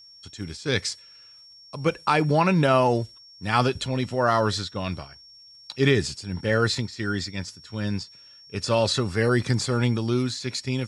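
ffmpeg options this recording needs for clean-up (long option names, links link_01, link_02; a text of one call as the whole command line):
ffmpeg -i in.wav -af "bandreject=frequency=5500:width=30" out.wav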